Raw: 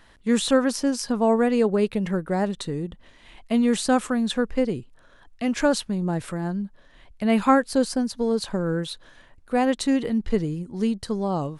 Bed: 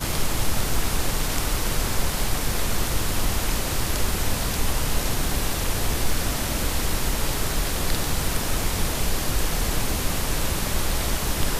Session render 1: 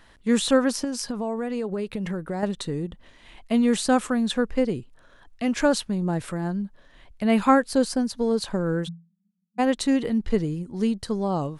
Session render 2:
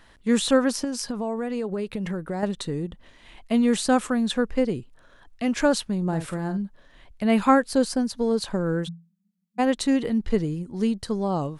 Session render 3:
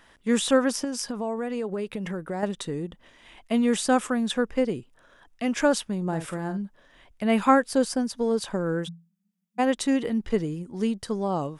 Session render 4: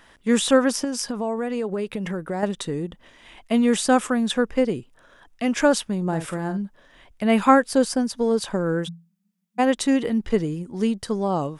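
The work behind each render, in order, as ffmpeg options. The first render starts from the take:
ffmpeg -i in.wav -filter_complex "[0:a]asettb=1/sr,asplit=3[link_01][link_02][link_03];[link_01]atrim=end=0.844[link_04];[link_02]atrim=start=0.84:end=2.43,asetpts=PTS-STARTPTS,afade=type=in:duration=0.004:curve=qsin,afade=type=out:start_time=1.586:duration=0.004:curve=qsin,acompressor=threshold=-25dB:ratio=5:attack=3.2:release=140:knee=1:detection=peak[link_05];[link_03]atrim=start=2.426[link_06];[link_04][link_05]acrossfade=duration=0.004:curve1=hsin:curve2=qsin[link_07];[link_07][link_06]acrossfade=duration=0.004:curve1=qsin:curve2=hsin,asplit=3[link_08][link_09][link_10];[link_08]afade=type=out:start_time=8.87:duration=0.02[link_11];[link_09]asuperpass=centerf=190:order=20:qfactor=4,afade=type=in:start_time=8.87:duration=0.02,afade=type=out:start_time=9.58:duration=0.02[link_12];[link_10]afade=type=in:start_time=9.58:duration=0.02[link_13];[link_11][link_12][link_13]amix=inputs=3:normalize=0" out.wav
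ffmpeg -i in.wav -filter_complex "[0:a]asettb=1/sr,asplit=3[link_01][link_02][link_03];[link_01]atrim=end=6.034[link_04];[link_02]atrim=start=6.03:end=6.58,asetpts=PTS-STARTPTS,afade=type=in:duration=0.004:curve=qsin,afade=type=out:start_time=0.546:duration=0.004:curve=qsin,asplit=2[link_05][link_06];[link_06]adelay=49,volume=-10dB[link_07];[link_05][link_07]amix=inputs=2:normalize=0,atrim=end_sample=24255[link_08];[link_03]atrim=start=6.576[link_09];[link_04][link_08]acrossfade=duration=0.004:curve1=hsin:curve2=qsin[link_10];[link_10][link_09]acrossfade=duration=0.004:curve1=qsin:curve2=hsin" out.wav
ffmpeg -i in.wav -af "lowshelf=frequency=140:gain=-9,bandreject=frequency=4200:width=8.3" out.wav
ffmpeg -i in.wav -af "volume=3.5dB" out.wav

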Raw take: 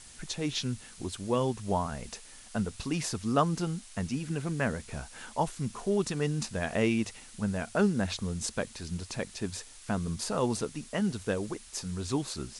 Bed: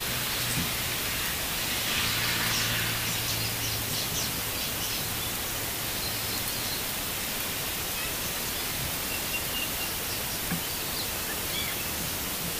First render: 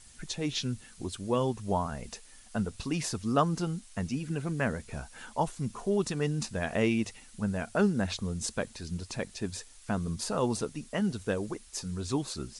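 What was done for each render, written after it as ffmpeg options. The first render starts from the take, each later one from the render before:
ffmpeg -i in.wav -af "afftdn=noise_reduction=6:noise_floor=-51" out.wav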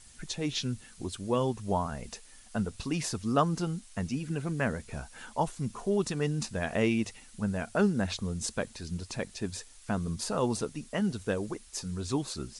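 ffmpeg -i in.wav -af anull out.wav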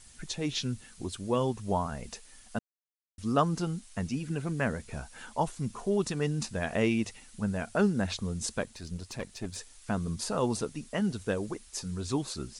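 ffmpeg -i in.wav -filter_complex "[0:a]asettb=1/sr,asplit=3[link_01][link_02][link_03];[link_01]atrim=end=8.634[link_04];[link_02]atrim=start=8.63:end=9.56,asetpts=PTS-STARTPTS,afade=type=in:duration=0.004:curve=qsin,afade=type=out:start_time=0.926:duration=0.004:curve=qsin,aeval=exprs='(tanh(22.4*val(0)+0.55)-tanh(0.55))/22.4':channel_layout=same[link_05];[link_03]atrim=start=9.556[link_06];[link_04][link_05]acrossfade=duration=0.004:curve1=hsin:curve2=qsin[link_07];[link_07][link_06]acrossfade=duration=0.004:curve1=qsin:curve2=hsin,asplit=3[link_08][link_09][link_10];[link_08]atrim=end=2.59,asetpts=PTS-STARTPTS,afade=type=out:start_time=2.586:duration=0.004:curve=hsin[link_11];[link_09]atrim=start=2.59:end=3.18,asetpts=PTS-STARTPTS,volume=0[link_12];[link_10]atrim=start=3.18,asetpts=PTS-STARTPTS,afade=type=in:duration=0.004:curve=hsin[link_13];[link_11][link_12][link_13]concat=n=3:v=0:a=1" out.wav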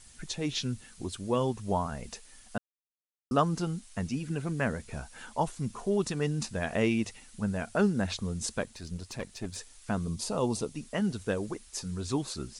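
ffmpeg -i in.wav -filter_complex "[0:a]asettb=1/sr,asplit=3[link_01][link_02][link_03];[link_01]atrim=end=10.064[link_04];[link_02]atrim=start=10.06:end=10.76,asetpts=PTS-STARTPTS,afade=type=in:duration=0.004:curve=qsin,afade=type=out:start_time=0.696:duration=0.004:curve=qsin,equalizer=frequency=1600:width_type=o:width=0.59:gain=-9.5[link_05];[link_03]atrim=start=10.756[link_06];[link_04][link_05]acrossfade=duration=0.004:curve1=hsin:curve2=qsin[link_07];[link_07][link_06]acrossfade=duration=0.004:curve1=qsin:curve2=hsin,asplit=3[link_08][link_09][link_10];[link_08]atrim=end=2.58,asetpts=PTS-STARTPTS,afade=type=out:start_time=2.576:duration=0.004:curve=hsin[link_11];[link_09]atrim=start=2.58:end=3.31,asetpts=PTS-STARTPTS,volume=0[link_12];[link_10]atrim=start=3.31,asetpts=PTS-STARTPTS,afade=type=in:duration=0.004:curve=hsin[link_13];[link_11][link_12][link_13]concat=n=3:v=0:a=1" out.wav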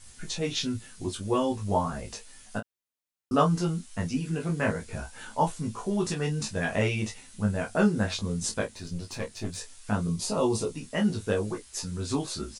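ffmpeg -i in.wav -filter_complex "[0:a]asplit=2[link_01][link_02];[link_02]adelay=19,volume=-3dB[link_03];[link_01][link_03]amix=inputs=2:normalize=0,aecho=1:1:11|28:0.531|0.398" out.wav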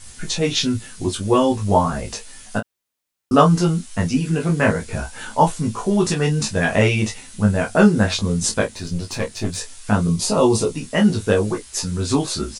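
ffmpeg -i in.wav -af "volume=10dB,alimiter=limit=-1dB:level=0:latency=1" out.wav

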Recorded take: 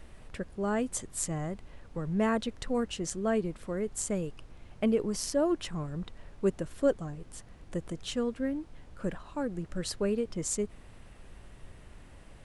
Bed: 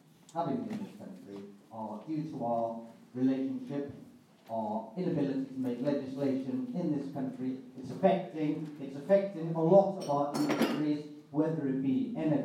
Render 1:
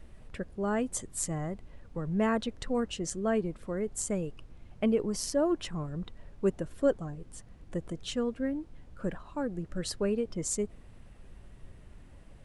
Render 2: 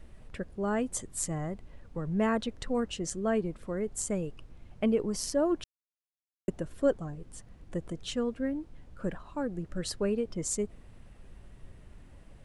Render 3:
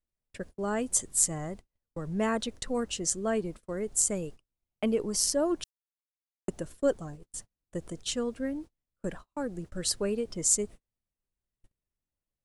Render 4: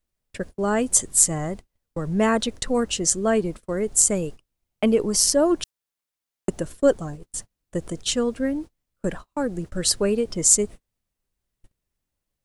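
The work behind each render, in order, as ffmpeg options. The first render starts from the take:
ffmpeg -i in.wav -af "afftdn=noise_reduction=6:noise_floor=-52" out.wav
ffmpeg -i in.wav -filter_complex "[0:a]asplit=3[link_01][link_02][link_03];[link_01]atrim=end=5.64,asetpts=PTS-STARTPTS,afade=type=out:start_time=5.636:duration=0.004:curve=hsin[link_04];[link_02]atrim=start=5.64:end=6.48,asetpts=PTS-STARTPTS,volume=0[link_05];[link_03]atrim=start=6.48,asetpts=PTS-STARTPTS,afade=type=in:duration=0.004:curve=hsin[link_06];[link_04][link_05][link_06]concat=n=3:v=0:a=1" out.wav
ffmpeg -i in.wav -af "bass=frequency=250:gain=-3,treble=frequency=4000:gain=10,agate=range=-38dB:threshold=-42dB:ratio=16:detection=peak" out.wav
ffmpeg -i in.wav -af "volume=8.5dB,alimiter=limit=-1dB:level=0:latency=1" out.wav

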